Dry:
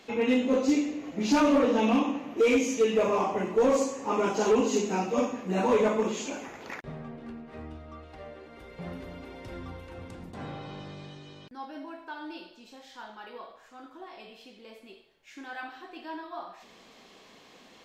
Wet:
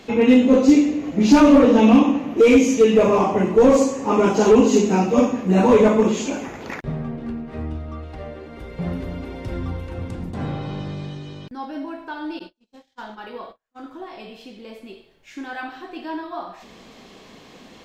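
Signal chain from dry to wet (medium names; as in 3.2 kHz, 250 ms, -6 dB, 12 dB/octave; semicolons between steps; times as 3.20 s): 12.39–13.84 s: gate -47 dBFS, range -38 dB; bass shelf 300 Hz +10 dB; trim +6.5 dB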